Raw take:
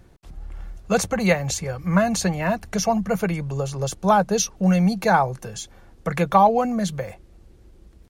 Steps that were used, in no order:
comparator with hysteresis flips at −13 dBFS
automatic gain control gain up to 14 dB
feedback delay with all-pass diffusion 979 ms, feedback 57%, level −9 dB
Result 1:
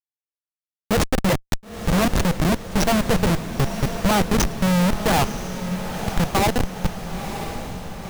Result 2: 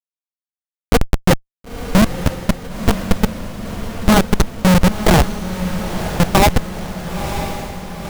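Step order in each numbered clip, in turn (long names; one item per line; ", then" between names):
automatic gain control, then comparator with hysteresis, then feedback delay with all-pass diffusion
comparator with hysteresis, then automatic gain control, then feedback delay with all-pass diffusion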